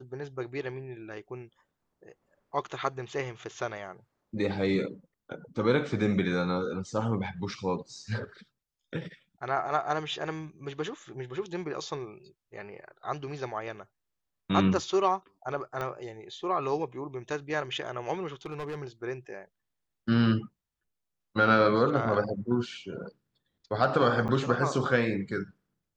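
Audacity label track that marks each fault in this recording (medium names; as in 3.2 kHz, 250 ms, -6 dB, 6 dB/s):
15.810000	15.810000	pop -20 dBFS
18.450000	18.790000	clipped -32.5 dBFS
24.280000	24.290000	dropout 7.9 ms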